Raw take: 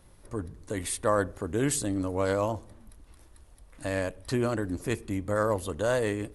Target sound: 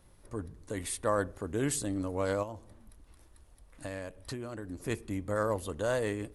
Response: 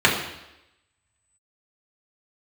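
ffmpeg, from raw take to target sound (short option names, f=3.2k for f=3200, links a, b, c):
-filter_complex "[0:a]asplit=3[a][b][c];[a]afade=t=out:st=2.42:d=0.02[d];[b]acompressor=threshold=-32dB:ratio=12,afade=t=in:st=2.42:d=0.02,afade=t=out:st=4.81:d=0.02[e];[c]afade=t=in:st=4.81:d=0.02[f];[d][e][f]amix=inputs=3:normalize=0,volume=-4dB"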